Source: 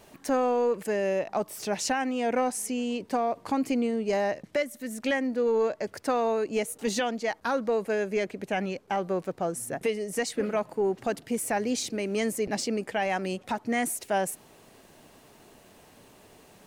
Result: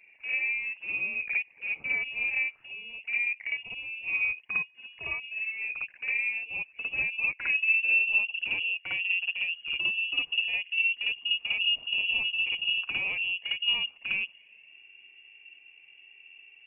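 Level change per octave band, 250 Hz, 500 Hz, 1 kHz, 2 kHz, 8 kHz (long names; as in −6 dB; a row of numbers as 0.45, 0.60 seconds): below −25 dB, −29.5 dB, −22.0 dB, +9.5 dB, below −40 dB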